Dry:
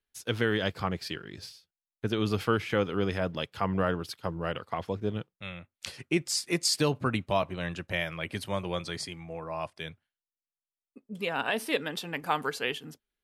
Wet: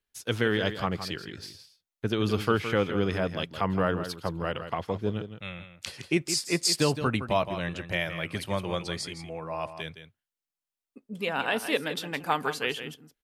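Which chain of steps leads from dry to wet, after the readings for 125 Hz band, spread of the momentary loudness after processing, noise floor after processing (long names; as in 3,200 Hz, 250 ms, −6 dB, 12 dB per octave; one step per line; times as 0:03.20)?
+2.0 dB, 13 LU, below −85 dBFS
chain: single-tap delay 165 ms −10.5 dB
level +1.5 dB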